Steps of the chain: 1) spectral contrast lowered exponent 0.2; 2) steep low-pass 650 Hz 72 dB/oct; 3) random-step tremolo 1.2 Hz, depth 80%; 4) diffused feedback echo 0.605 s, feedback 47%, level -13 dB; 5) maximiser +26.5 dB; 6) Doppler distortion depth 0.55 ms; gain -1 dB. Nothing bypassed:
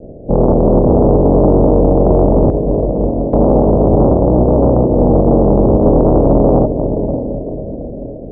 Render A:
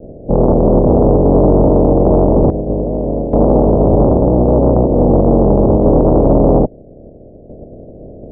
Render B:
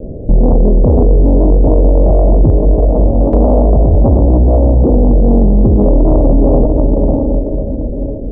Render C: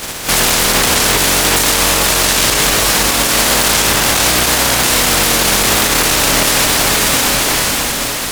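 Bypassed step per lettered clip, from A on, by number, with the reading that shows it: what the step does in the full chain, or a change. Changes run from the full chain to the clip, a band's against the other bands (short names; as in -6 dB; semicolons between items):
4, momentary loudness spread change -4 LU; 1, 125 Hz band +6.0 dB; 2, 1 kHz band +13.5 dB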